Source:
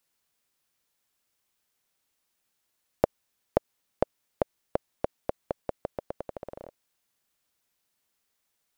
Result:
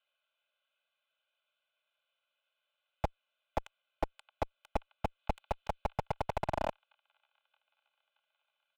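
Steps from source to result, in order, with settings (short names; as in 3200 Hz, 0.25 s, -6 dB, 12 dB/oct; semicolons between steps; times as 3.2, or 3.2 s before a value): fixed phaser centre 1100 Hz, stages 8; on a send: thin delay 0.624 s, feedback 59%, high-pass 2800 Hz, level -12 dB; on the sum: mistuned SSB +230 Hz 250–3400 Hz; 5.19–5.91 high shelf 2800 Hz +8 dB; in parallel at -5.5 dB: fuzz box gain 44 dB, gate -47 dBFS; on the sum: comb 2 ms, depth 79%; slew limiter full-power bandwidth 33 Hz; gain +1 dB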